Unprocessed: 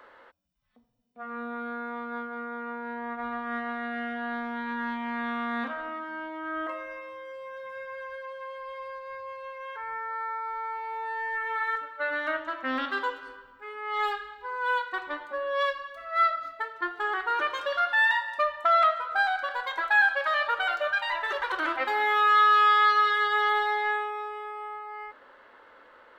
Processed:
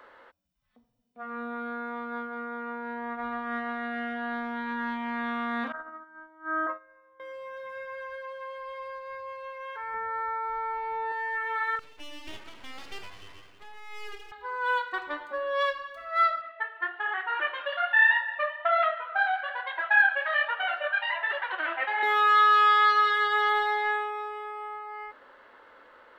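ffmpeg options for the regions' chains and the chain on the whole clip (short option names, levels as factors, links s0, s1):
-filter_complex "[0:a]asettb=1/sr,asplit=3[s0][s1][s2];[s0]atrim=end=5.724[s3];[s1]atrim=start=5.72:end=7.2,asetpts=PTS-STARTPTS,afade=t=in:d=0.004:c=qsin,afade=t=out:st=1.476:d=0.004:c=qsin,agate=range=0.1:threshold=0.0178:ratio=16:release=100:detection=peak,highshelf=f=2000:t=q:w=3:g=-9[s4];[s2]atrim=start=7.196[s5];[s3][s4]acrossfade=d=0.004:c1=hsin:c2=qsin[s6];[s6][s5]acrossfade=d=0.004:c1=qsin:c2=hsin,asettb=1/sr,asplit=3[s7][s8][s9];[s7]atrim=end=9.944[s10];[s8]atrim=start=9.94:end=11.12,asetpts=PTS-STARTPTS,afade=t=in:d=0.004:c=qsin,afade=t=out:st=1.176:d=0.004:c=qsin,lowpass=4500,lowshelf=f=410:g=11.5[s11];[s9]atrim=start=11.116[s12];[s10][s11]acrossfade=d=0.004:c1=hsin:c2=qsin[s13];[s13][s12]acrossfade=d=0.004:c1=qsin:c2=hsin,asettb=1/sr,asplit=3[s14][s15][s16];[s14]atrim=end=11.794[s17];[s15]atrim=start=11.79:end=14.32,asetpts=PTS-STARTPTS,afade=t=in:d=0.004:c=qsin,afade=t=out:st=2.526:d=0.004:c=qsin,acompressor=threshold=0.00447:ratio=2:attack=3.2:release=140:knee=1:detection=peak,aecho=1:1:2.6:0.75,atrim=end_sample=111573,aeval=exprs='abs(val(0))':c=same[s18];[s16]atrim=start=14.316[s19];[s17][s18]acrossfade=d=0.004:c1=hsin:c2=qsin[s20];[s20][s19]acrossfade=d=0.004:c1=qsin:c2=hsin,asettb=1/sr,asplit=3[s21][s22][s23];[s21]atrim=end=16.414[s24];[s22]atrim=start=16.41:end=22.03,asetpts=PTS-STARTPTS,afade=t=in:d=0.004:c=qsin,afade=t=out:st=5.616:d=0.004:c=qsin,highpass=f=360:w=0.5412,highpass=f=360:w=1.3066,equalizer=f=430:t=q:w=4:g=-7,equalizer=f=700:t=q:w=4:g=6,equalizer=f=1200:t=q:w=4:g=-3,equalizer=f=1800:t=q:w=4:g=7,equalizer=f=2800:t=q:w=4:g=6,lowpass=f=3400:w=0.5412,lowpass=f=3400:w=1.3066,flanger=delay=2.4:depth=8.5:regen=-38:speed=1.2:shape=triangular[s25];[s23]atrim=start=22.026[s26];[s24][s25]acrossfade=d=0.004:c1=hsin:c2=qsin[s27];[s27][s26]acrossfade=d=0.004:c1=qsin:c2=hsin"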